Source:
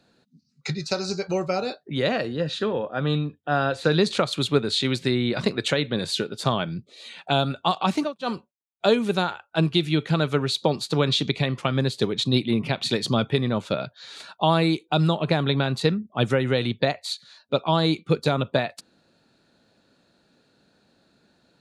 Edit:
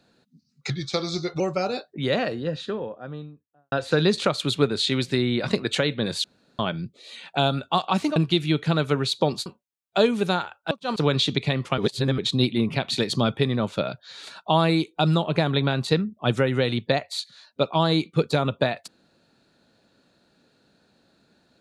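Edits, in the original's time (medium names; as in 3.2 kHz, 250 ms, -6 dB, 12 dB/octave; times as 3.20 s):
0.70–1.33 s: speed 90%
1.98–3.65 s: studio fade out
6.17–6.52 s: room tone
8.09–8.34 s: swap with 9.59–10.89 s
11.71–12.11 s: reverse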